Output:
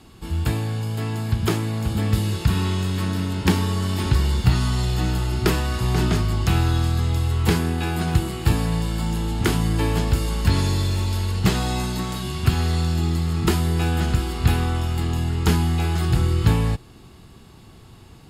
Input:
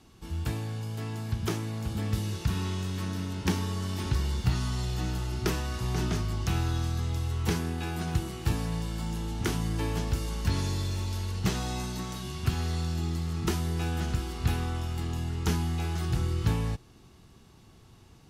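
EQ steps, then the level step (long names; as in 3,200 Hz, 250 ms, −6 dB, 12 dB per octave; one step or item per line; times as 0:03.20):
notch filter 5,900 Hz, Q 5.2
+9.0 dB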